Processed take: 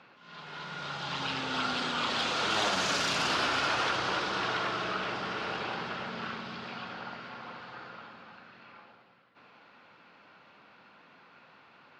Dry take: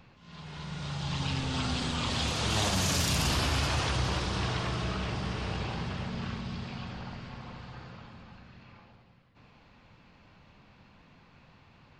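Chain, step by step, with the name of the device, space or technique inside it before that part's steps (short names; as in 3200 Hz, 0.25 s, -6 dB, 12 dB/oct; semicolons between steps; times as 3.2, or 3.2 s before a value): intercom (BPF 330–4600 Hz; bell 1400 Hz +8 dB 0.27 oct; soft clip -21.5 dBFS, distortion -24 dB); gain +3 dB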